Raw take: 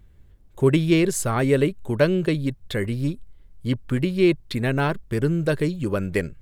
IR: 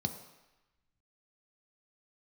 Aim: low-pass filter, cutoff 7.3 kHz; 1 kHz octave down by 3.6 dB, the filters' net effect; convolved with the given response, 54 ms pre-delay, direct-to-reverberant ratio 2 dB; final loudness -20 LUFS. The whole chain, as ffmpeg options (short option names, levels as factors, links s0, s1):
-filter_complex "[0:a]lowpass=7300,equalizer=f=1000:t=o:g=-5,asplit=2[s0][s1];[1:a]atrim=start_sample=2205,adelay=54[s2];[s1][s2]afir=irnorm=-1:irlink=0,volume=0.596[s3];[s0][s3]amix=inputs=2:normalize=0,volume=0.668"